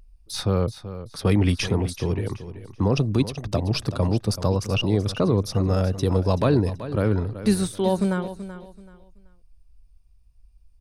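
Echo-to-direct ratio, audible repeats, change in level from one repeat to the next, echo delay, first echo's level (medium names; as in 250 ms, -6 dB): -12.5 dB, 2, -11.5 dB, 381 ms, -13.0 dB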